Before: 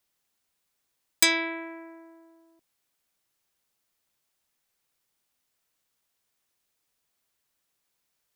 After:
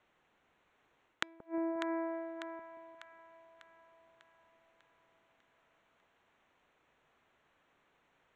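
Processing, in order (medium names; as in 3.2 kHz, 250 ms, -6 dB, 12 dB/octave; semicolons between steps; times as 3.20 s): local Wiener filter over 9 samples; low-pass that closes with the level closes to 670 Hz, closed at -35.5 dBFS; treble shelf 3.5 kHz -7 dB; inverted gate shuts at -28 dBFS, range -39 dB; reverse; compression 6:1, threshold -46 dBFS, peak gain reduction 9.5 dB; reverse; low-pass 5.5 kHz; bass shelf 210 Hz -7 dB; on a send: two-band feedback delay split 720 Hz, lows 177 ms, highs 597 ms, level -7.5 dB; on the sum: trim +15.5 dB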